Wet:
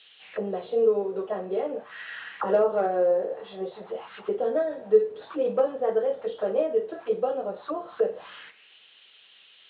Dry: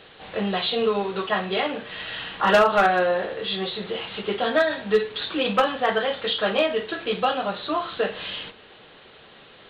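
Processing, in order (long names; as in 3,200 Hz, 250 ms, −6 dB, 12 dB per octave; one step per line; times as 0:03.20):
low-shelf EQ 300 Hz +10 dB
envelope filter 480–3,500 Hz, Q 3.1, down, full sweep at −20.5 dBFS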